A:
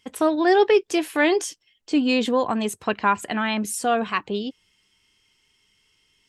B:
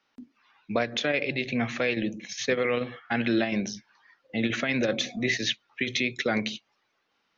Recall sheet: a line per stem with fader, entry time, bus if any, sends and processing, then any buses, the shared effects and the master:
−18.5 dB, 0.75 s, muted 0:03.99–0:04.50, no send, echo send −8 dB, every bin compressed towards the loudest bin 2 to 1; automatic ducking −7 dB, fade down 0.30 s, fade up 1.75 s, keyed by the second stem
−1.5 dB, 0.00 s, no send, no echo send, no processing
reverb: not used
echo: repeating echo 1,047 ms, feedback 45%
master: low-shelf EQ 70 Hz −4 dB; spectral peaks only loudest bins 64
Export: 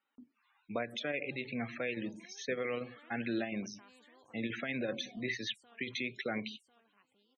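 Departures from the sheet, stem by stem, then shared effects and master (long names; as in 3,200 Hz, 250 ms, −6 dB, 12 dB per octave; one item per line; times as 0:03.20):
stem A −18.5 dB → −30.5 dB
stem B −1.5 dB → −10.0 dB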